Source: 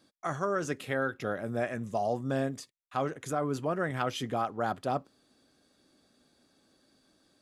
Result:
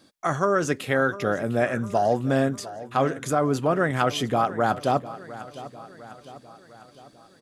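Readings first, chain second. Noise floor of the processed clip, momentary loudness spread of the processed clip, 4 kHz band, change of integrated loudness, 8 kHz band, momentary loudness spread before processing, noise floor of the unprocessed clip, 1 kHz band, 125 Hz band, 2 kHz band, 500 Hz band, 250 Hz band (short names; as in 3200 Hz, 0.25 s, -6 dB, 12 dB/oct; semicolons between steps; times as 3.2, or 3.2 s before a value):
-55 dBFS, 16 LU, +8.5 dB, +8.5 dB, +8.5 dB, 4 LU, -70 dBFS, +8.5 dB, +8.5 dB, +8.5 dB, +8.5 dB, +8.5 dB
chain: feedback echo 0.703 s, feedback 54%, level -16 dB; gain +8.5 dB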